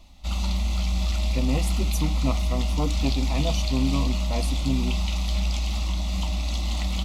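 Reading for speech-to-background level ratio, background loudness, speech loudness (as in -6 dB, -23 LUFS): -4.0 dB, -26.5 LUFS, -30.5 LUFS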